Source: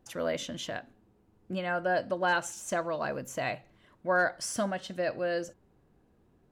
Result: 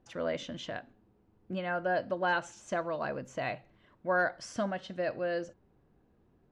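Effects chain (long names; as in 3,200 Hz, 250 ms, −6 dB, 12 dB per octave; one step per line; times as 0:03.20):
high-frequency loss of the air 120 metres
level −1.5 dB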